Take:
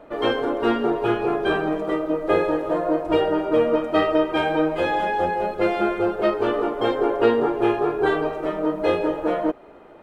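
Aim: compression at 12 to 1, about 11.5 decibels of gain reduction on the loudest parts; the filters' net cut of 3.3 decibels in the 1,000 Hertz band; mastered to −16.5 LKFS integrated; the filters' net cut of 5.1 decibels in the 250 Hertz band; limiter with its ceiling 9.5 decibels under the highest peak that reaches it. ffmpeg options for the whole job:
ffmpeg -i in.wav -af "equalizer=frequency=250:width_type=o:gain=-7.5,equalizer=frequency=1000:width_type=o:gain=-4,acompressor=threshold=-26dB:ratio=12,volume=16.5dB,alimiter=limit=-8dB:level=0:latency=1" out.wav

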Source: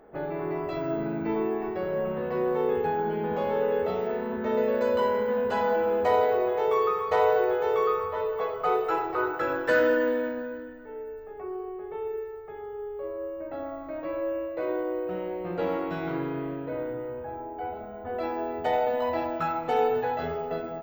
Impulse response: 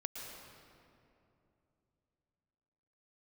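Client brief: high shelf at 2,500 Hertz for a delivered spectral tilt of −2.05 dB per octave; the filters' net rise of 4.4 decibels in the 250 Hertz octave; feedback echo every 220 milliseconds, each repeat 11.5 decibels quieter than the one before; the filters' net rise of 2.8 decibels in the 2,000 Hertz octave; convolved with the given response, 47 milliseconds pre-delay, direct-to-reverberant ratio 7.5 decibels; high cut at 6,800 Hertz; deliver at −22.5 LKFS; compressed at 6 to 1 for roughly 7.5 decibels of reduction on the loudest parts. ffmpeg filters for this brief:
-filter_complex "[0:a]lowpass=6800,equalizer=frequency=250:width_type=o:gain=6,equalizer=frequency=2000:width_type=o:gain=7.5,highshelf=frequency=2500:gain=-8.5,acompressor=threshold=-25dB:ratio=6,aecho=1:1:220|440|660:0.266|0.0718|0.0194,asplit=2[link_01][link_02];[1:a]atrim=start_sample=2205,adelay=47[link_03];[link_02][link_03]afir=irnorm=-1:irlink=0,volume=-7dB[link_04];[link_01][link_04]amix=inputs=2:normalize=0,volume=7dB"

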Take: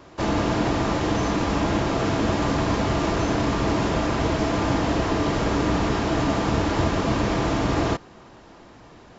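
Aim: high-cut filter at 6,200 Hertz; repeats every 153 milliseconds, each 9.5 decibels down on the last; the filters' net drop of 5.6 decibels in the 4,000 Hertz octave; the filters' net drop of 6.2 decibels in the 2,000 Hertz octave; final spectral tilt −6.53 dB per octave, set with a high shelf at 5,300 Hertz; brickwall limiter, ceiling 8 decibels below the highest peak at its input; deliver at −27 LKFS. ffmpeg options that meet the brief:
ffmpeg -i in.wav -af "lowpass=6200,equalizer=frequency=2000:width_type=o:gain=-7.5,equalizer=frequency=4000:width_type=o:gain=-8,highshelf=frequency=5300:gain=9,alimiter=limit=-18dB:level=0:latency=1,aecho=1:1:153|306|459|612:0.335|0.111|0.0365|0.012,volume=-0.5dB" out.wav

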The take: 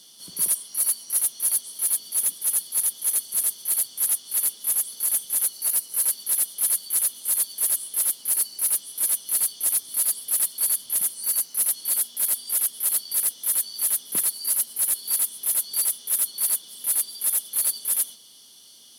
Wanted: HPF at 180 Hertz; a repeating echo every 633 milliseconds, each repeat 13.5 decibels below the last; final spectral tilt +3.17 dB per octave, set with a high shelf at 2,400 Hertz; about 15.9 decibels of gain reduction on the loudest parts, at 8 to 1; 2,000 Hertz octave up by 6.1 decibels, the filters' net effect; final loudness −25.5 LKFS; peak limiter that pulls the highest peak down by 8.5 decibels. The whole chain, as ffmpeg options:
ffmpeg -i in.wav -af "highpass=180,equalizer=frequency=2000:width_type=o:gain=5,highshelf=frequency=2400:gain=5,acompressor=threshold=-31dB:ratio=8,alimiter=level_in=4.5dB:limit=-24dB:level=0:latency=1,volume=-4.5dB,aecho=1:1:633|1266:0.211|0.0444,volume=10.5dB" out.wav

